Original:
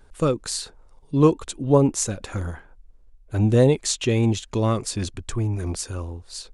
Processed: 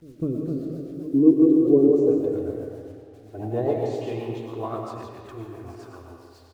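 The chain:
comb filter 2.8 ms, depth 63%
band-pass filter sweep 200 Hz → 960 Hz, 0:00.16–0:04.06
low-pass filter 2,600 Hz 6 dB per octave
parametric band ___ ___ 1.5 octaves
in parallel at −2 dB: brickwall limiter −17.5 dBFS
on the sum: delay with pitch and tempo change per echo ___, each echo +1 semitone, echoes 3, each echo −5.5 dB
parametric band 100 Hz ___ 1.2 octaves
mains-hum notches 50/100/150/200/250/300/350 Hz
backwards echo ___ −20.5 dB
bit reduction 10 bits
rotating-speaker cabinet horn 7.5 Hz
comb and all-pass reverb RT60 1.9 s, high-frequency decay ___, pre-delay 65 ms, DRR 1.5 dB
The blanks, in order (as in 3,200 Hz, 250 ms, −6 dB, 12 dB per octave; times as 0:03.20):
1,100 Hz, −8 dB, 266 ms, +6.5 dB, 201 ms, 0.65×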